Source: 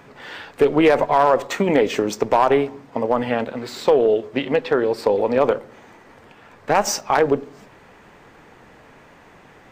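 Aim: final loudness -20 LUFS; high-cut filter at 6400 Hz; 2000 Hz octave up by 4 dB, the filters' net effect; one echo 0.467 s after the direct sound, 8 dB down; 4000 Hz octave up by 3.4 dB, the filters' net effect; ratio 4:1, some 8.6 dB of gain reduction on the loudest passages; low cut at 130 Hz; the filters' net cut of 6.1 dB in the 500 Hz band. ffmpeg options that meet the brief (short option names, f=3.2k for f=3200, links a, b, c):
-af "highpass=130,lowpass=6.4k,equalizer=f=500:t=o:g=-7.5,equalizer=f=2k:t=o:g=4.5,equalizer=f=4k:t=o:g=4,acompressor=threshold=-23dB:ratio=4,aecho=1:1:467:0.398,volume=8dB"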